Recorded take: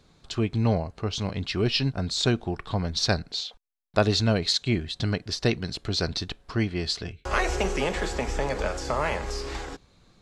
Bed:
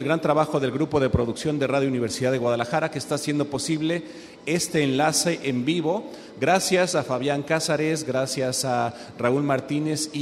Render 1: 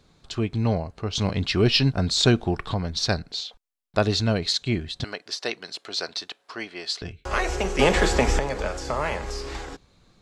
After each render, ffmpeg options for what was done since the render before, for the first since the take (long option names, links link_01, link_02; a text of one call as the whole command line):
ffmpeg -i in.wav -filter_complex "[0:a]asettb=1/sr,asplit=3[link_01][link_02][link_03];[link_01]atrim=end=1.154[link_04];[link_02]atrim=start=1.15:end=2.74,asetpts=PTS-STARTPTS,afade=type=in:duration=0.004:curve=qsin,afade=type=out:start_time=1.586:duration=0.004:curve=qsin,acontrast=30[link_05];[link_03]atrim=start=2.736[link_06];[link_04][link_05]acrossfade=duration=0.004:curve1=hsin:curve2=qsin[link_07];[link_07][link_06]acrossfade=duration=0.004:curve1=qsin:curve2=hsin,asettb=1/sr,asplit=3[link_08][link_09][link_10];[link_08]atrim=end=5.044[link_11];[link_09]atrim=start=5.04:end=7.02,asetpts=PTS-STARTPTS,afade=type=in:duration=0.004:curve=qsin,afade=type=out:start_time=1.976:duration=0.004:curve=qsin,highpass=530[link_12];[link_10]atrim=start=7.016[link_13];[link_11][link_12]acrossfade=duration=0.004:curve1=hsin:curve2=qsin[link_14];[link_14][link_13]acrossfade=duration=0.004:curve1=qsin:curve2=hsin,asplit=3[link_15][link_16][link_17];[link_15]atrim=end=7.792[link_18];[link_16]atrim=start=7.788:end=8.392,asetpts=PTS-STARTPTS,volume=8.5dB[link_19];[link_17]atrim=start=8.388[link_20];[link_18][link_19]acrossfade=duration=0.004:curve1=hsin:curve2=hsin[link_21];[link_21][link_20]acrossfade=duration=0.004:curve1=hsin:curve2=hsin" out.wav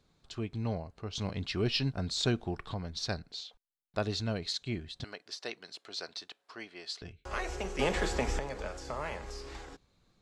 ffmpeg -i in.wav -af "volume=-11dB" out.wav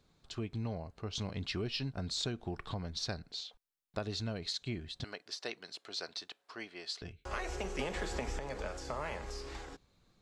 ffmpeg -i in.wav -af "acompressor=threshold=-33dB:ratio=10" out.wav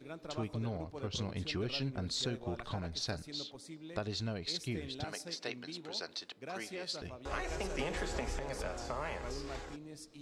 ffmpeg -i in.wav -i bed.wav -filter_complex "[1:a]volume=-24.5dB[link_01];[0:a][link_01]amix=inputs=2:normalize=0" out.wav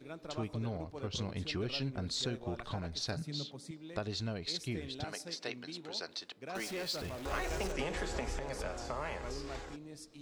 ffmpeg -i in.wav -filter_complex "[0:a]asettb=1/sr,asplit=3[link_01][link_02][link_03];[link_01]atrim=end=3.164[link_04];[link_02]atrim=start=3.16:end=3.71,asetpts=PTS-STARTPTS,afade=type=in:duration=0.004:curve=qsin,afade=type=out:start_time=0.546:duration=0.004:curve=qsin,highpass=frequency=150:width_type=q:width=4.9[link_05];[link_03]atrim=start=3.706[link_06];[link_04][link_05]acrossfade=duration=0.004:curve1=hsin:curve2=qsin[link_07];[link_07][link_06]acrossfade=duration=0.004:curve1=qsin:curve2=hsin,asettb=1/sr,asplit=3[link_08][link_09][link_10];[link_08]atrim=end=6.554[link_11];[link_09]atrim=start=6.55:end=7.72,asetpts=PTS-STARTPTS,afade=type=in:duration=0.004:curve=qsin,afade=type=out:start_time=1.166:duration=0.004:curve=qsin,aeval=exprs='val(0)+0.5*0.00841*sgn(val(0))':channel_layout=same[link_12];[link_10]atrim=start=7.716[link_13];[link_11][link_12]acrossfade=duration=0.004:curve1=hsin:curve2=qsin[link_14];[link_14][link_13]acrossfade=duration=0.004:curve1=qsin:curve2=hsin" out.wav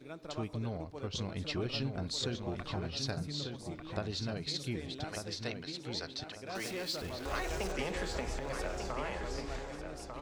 ffmpeg -i in.wav -filter_complex "[0:a]asplit=2[link_01][link_02];[link_02]adelay=1195,lowpass=frequency=4200:poles=1,volume=-6dB,asplit=2[link_03][link_04];[link_04]adelay=1195,lowpass=frequency=4200:poles=1,volume=0.3,asplit=2[link_05][link_06];[link_06]adelay=1195,lowpass=frequency=4200:poles=1,volume=0.3,asplit=2[link_07][link_08];[link_08]adelay=1195,lowpass=frequency=4200:poles=1,volume=0.3[link_09];[link_01][link_03][link_05][link_07][link_09]amix=inputs=5:normalize=0" out.wav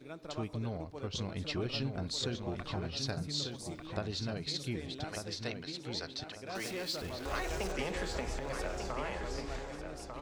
ffmpeg -i in.wav -filter_complex "[0:a]asettb=1/sr,asplit=3[link_01][link_02][link_03];[link_01]atrim=end=3.294[link_04];[link_02]atrim=start=3.29:end=3.87,asetpts=PTS-STARTPTS,afade=type=in:duration=0.004:curve=qsin,afade=type=out:start_time=0.576:duration=0.004:curve=qsin,bass=frequency=250:gain=-1,treble=frequency=4000:gain=8[link_05];[link_03]atrim=start=3.866[link_06];[link_04][link_05]acrossfade=duration=0.004:curve1=hsin:curve2=qsin[link_07];[link_07][link_06]acrossfade=duration=0.004:curve1=qsin:curve2=hsin" out.wav